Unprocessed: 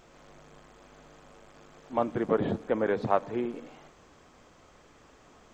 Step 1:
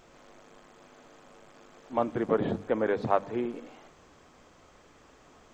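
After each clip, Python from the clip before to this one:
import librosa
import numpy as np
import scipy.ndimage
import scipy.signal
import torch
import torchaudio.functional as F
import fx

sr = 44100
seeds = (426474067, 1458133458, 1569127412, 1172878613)

y = fx.hum_notches(x, sr, base_hz=50, count=4)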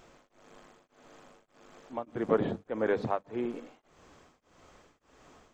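y = x * np.abs(np.cos(np.pi * 1.7 * np.arange(len(x)) / sr))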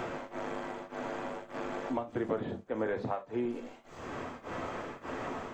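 y = fx.rev_gated(x, sr, seeds[0], gate_ms=90, shape='falling', drr_db=4.5)
y = fx.band_squash(y, sr, depth_pct=100)
y = y * 10.0 ** (-1.0 / 20.0)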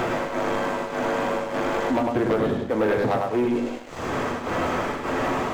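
y = fx.echo_feedback(x, sr, ms=101, feedback_pct=30, wet_db=-4.5)
y = fx.leveller(y, sr, passes=3)
y = y * 10.0 ** (2.0 / 20.0)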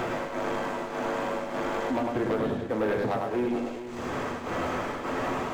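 y = x + 10.0 ** (-11.0 / 20.0) * np.pad(x, (int(430 * sr / 1000.0), 0))[:len(x)]
y = y * 10.0 ** (-5.5 / 20.0)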